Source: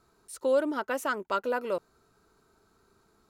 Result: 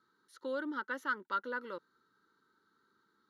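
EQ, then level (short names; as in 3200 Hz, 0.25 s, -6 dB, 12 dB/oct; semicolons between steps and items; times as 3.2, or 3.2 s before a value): speaker cabinet 330–9500 Hz, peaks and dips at 410 Hz -8 dB, 710 Hz -5 dB, 1100 Hz -7 dB, 5100 Hz -7 dB; bell 6800 Hz -7.5 dB 1.6 oct; fixed phaser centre 2500 Hz, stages 6; 0.0 dB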